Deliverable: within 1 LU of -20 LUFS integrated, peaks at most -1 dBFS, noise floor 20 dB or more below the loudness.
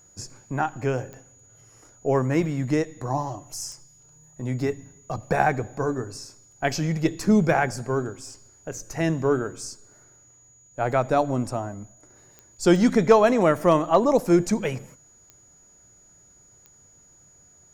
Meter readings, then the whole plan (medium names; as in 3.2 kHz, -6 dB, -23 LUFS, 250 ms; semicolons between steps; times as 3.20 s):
clicks found 6; steady tone 6.8 kHz; tone level -53 dBFS; loudness -23.5 LUFS; peak level -6.0 dBFS; loudness target -20.0 LUFS
-> de-click; band-stop 6.8 kHz, Q 30; trim +3.5 dB